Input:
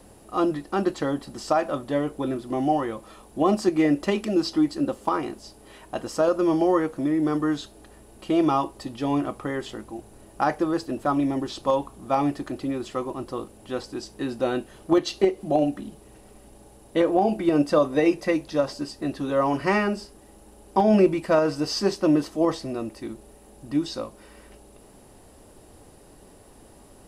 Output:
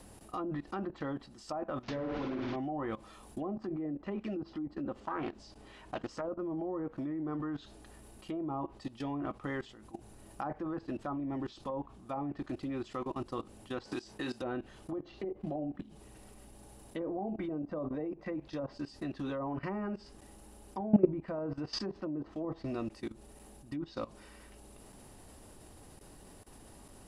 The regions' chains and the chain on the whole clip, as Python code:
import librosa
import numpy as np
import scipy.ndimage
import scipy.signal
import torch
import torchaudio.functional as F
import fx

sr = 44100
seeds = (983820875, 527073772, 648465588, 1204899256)

y = fx.chain(x, sr, fx.delta_mod(bps=32000, step_db=-29.0),
    fx.room_flutter(wall_m=9.9, rt60_s=0.94), at=(1.83, 2.56))
y = fx.chain(y, sr, fx.air_absorb(metres=68.0),
    fx.doppler_dist(depth_ms=0.33), at=(5.0, 6.26))
y = fx.chain(y, sr, fx.low_shelf(hz=270.0, db=-8.5),
    fx.doubler(ms=24.0, db=-11),
    fx.band_squash(depth_pct=100), at=(13.85, 14.42))
y = fx.env_lowpass_down(y, sr, base_hz=720.0, full_db=-17.5)
y = fx.peak_eq(y, sr, hz=480.0, db=-5.0, octaves=1.4)
y = fx.level_steps(y, sr, step_db=18)